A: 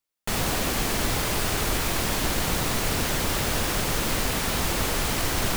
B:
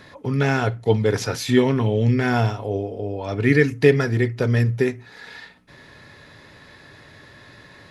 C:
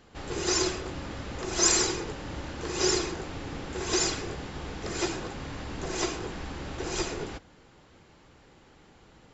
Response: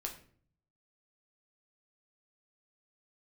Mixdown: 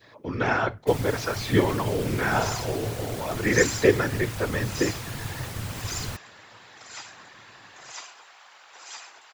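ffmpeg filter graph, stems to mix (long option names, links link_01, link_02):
-filter_complex "[0:a]adelay=600,volume=-6dB[link_01];[1:a]lowpass=frequency=6600:width=0.5412,lowpass=frequency=6600:width=1.3066,adynamicequalizer=threshold=0.0141:dfrequency=1100:dqfactor=0.91:tfrequency=1100:tqfactor=0.91:attack=5:release=100:ratio=0.375:range=3.5:mode=boostabove:tftype=bell,highpass=290,volume=0.5dB[link_02];[2:a]highpass=frequency=800:width=0.5412,highpass=frequency=800:width=1.3066,acontrast=76,adelay=1950,volume=-7.5dB[link_03];[link_01][link_02][link_03]amix=inputs=3:normalize=0,acrusher=bits=11:mix=0:aa=0.000001,afftfilt=real='hypot(re,im)*cos(2*PI*random(0))':imag='hypot(re,im)*sin(2*PI*random(1))':win_size=512:overlap=0.75,equalizer=frequency=110:width=2.1:gain=14.5"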